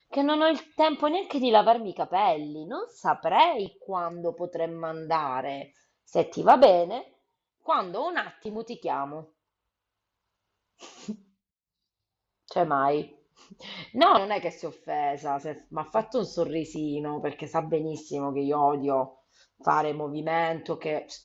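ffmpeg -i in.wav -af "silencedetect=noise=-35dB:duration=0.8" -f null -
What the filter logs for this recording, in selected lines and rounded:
silence_start: 9.20
silence_end: 10.83 | silence_duration: 1.62
silence_start: 11.12
silence_end: 12.49 | silence_duration: 1.36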